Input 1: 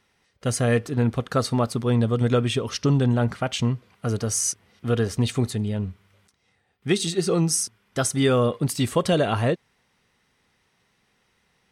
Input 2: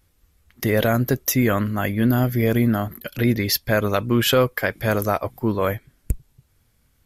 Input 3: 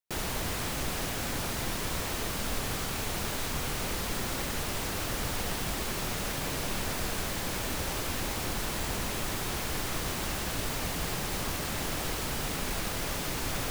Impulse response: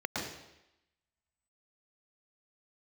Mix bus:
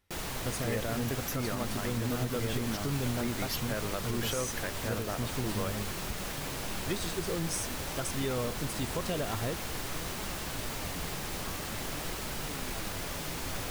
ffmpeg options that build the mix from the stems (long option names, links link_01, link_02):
-filter_complex "[0:a]volume=-12dB[link_01];[1:a]volume=-14.5dB[link_02];[2:a]flanger=delay=4.6:depth=8.5:regen=73:speed=0.49:shape=triangular,volume=0.5dB[link_03];[link_01][link_02][link_03]amix=inputs=3:normalize=0,alimiter=limit=-22dB:level=0:latency=1:release=111"